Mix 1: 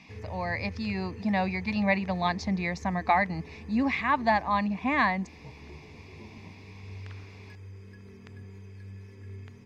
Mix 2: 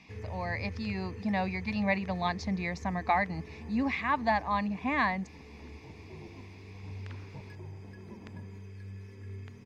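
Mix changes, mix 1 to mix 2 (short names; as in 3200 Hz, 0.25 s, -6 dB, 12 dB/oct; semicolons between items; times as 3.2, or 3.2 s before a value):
speech -3.5 dB; second sound: entry +1.90 s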